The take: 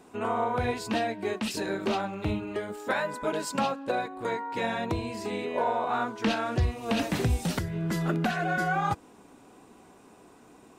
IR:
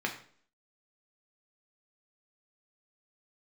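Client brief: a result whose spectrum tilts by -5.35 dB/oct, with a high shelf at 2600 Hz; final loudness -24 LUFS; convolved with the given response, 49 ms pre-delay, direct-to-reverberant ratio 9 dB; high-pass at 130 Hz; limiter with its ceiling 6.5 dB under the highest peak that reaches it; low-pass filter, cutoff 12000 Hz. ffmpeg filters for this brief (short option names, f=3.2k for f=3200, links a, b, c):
-filter_complex "[0:a]highpass=130,lowpass=12k,highshelf=f=2.6k:g=-8.5,alimiter=limit=-22dB:level=0:latency=1,asplit=2[a][b];[1:a]atrim=start_sample=2205,adelay=49[c];[b][c]afir=irnorm=-1:irlink=0,volume=-15.5dB[d];[a][d]amix=inputs=2:normalize=0,volume=8dB"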